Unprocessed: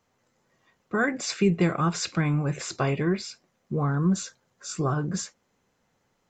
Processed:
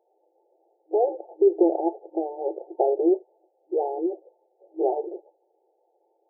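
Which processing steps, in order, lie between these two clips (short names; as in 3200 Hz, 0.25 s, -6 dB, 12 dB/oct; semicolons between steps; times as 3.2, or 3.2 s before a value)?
FFT band-pass 320–900 Hz; gain +8 dB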